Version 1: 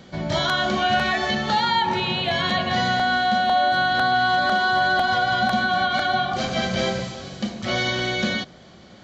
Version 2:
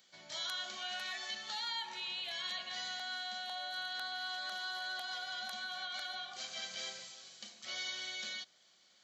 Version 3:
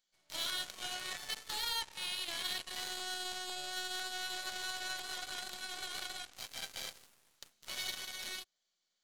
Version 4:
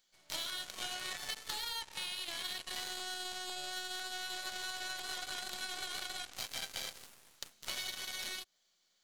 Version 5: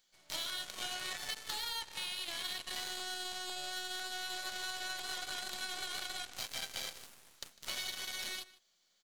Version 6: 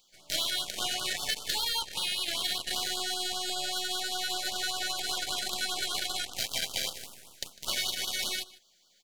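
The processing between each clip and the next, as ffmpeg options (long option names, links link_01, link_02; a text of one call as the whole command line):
ffmpeg -i in.wav -af "aderivative,volume=-7dB" out.wav
ffmpeg -i in.wav -filter_complex "[0:a]acrossover=split=5600[link_01][link_02];[link_02]acompressor=threshold=-56dB:ratio=4:attack=1:release=60[link_03];[link_01][link_03]amix=inputs=2:normalize=0,highshelf=frequency=6700:gain=9,aeval=exprs='0.0562*(cos(1*acos(clip(val(0)/0.0562,-1,1)))-cos(1*PI/2))+0.000398*(cos(3*acos(clip(val(0)/0.0562,-1,1)))-cos(3*PI/2))+0.01*(cos(5*acos(clip(val(0)/0.0562,-1,1)))-cos(5*PI/2))+0.00355*(cos(6*acos(clip(val(0)/0.0562,-1,1)))-cos(6*PI/2))+0.0158*(cos(7*acos(clip(val(0)/0.0562,-1,1)))-cos(7*PI/2))':channel_layout=same,volume=1dB" out.wav
ffmpeg -i in.wav -af "acompressor=threshold=-43dB:ratio=10,volume=8dB" out.wav
ffmpeg -i in.wav -filter_complex "[0:a]asoftclip=type=tanh:threshold=-23dB,asplit=2[link_01][link_02];[link_02]adelay=151.6,volume=-18dB,highshelf=frequency=4000:gain=-3.41[link_03];[link_01][link_03]amix=inputs=2:normalize=0,volume=1dB" out.wav
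ffmpeg -i in.wav -af "afftfilt=real='re*(1-between(b*sr/1024,960*pow(2100/960,0.5+0.5*sin(2*PI*5.1*pts/sr))/1.41,960*pow(2100/960,0.5+0.5*sin(2*PI*5.1*pts/sr))*1.41))':imag='im*(1-between(b*sr/1024,960*pow(2100/960,0.5+0.5*sin(2*PI*5.1*pts/sr))/1.41,960*pow(2100/960,0.5+0.5*sin(2*PI*5.1*pts/sr))*1.41))':win_size=1024:overlap=0.75,volume=9dB" out.wav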